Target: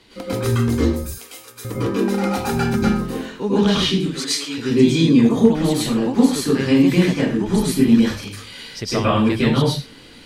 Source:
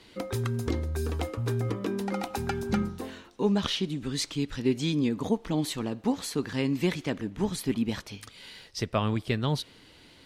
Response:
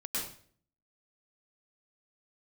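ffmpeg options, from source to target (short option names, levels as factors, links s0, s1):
-filter_complex "[0:a]asettb=1/sr,asplit=3[s0][s1][s2];[s0]atrim=end=0.924[s3];[s1]atrim=start=0.92:end=1.65,asetpts=PTS-STARTPTS,afade=t=in:d=0.004:c=qsin,afade=t=out:st=0.726:d=0.004:c=qsin,aderivative[s4];[s2]atrim=start=1.646[s5];[s3][s4]acrossfade=d=0.004:c1=hsin:c2=qsin[s6];[s6][s5]acrossfade=d=0.004:c1=qsin:c2=hsin,asettb=1/sr,asplit=3[s7][s8][s9];[s7]atrim=end=3.954[s10];[s8]atrim=start=3.95:end=4.58,asetpts=PTS-STARTPTS,afade=t=in:d=0.004:c=qsin,afade=t=out:st=0.626:d=0.004:c=qsin,highpass=500[s11];[s9]atrim=start=4.576[s12];[s10][s11]acrossfade=d=0.004:c1=hsin:c2=qsin[s13];[s13][s12]acrossfade=d=0.004:c1=qsin:c2=hsin[s14];[1:a]atrim=start_sample=2205,afade=t=out:st=0.3:d=0.01,atrim=end_sample=13671,asetrate=43659,aresample=44100[s15];[s14][s15]afir=irnorm=-1:irlink=0,volume=2.24"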